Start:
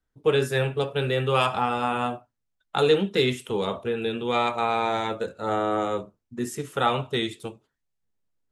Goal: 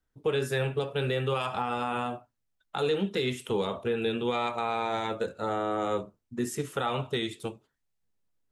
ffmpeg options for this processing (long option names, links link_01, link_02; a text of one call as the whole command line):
ffmpeg -i in.wav -af "alimiter=limit=-19dB:level=0:latency=1:release=196" out.wav